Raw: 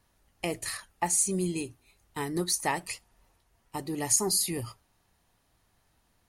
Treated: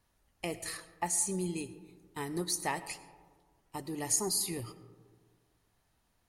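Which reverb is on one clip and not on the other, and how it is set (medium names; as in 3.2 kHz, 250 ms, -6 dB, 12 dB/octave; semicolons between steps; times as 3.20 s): algorithmic reverb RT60 1.6 s, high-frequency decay 0.3×, pre-delay 55 ms, DRR 14.5 dB; trim -5 dB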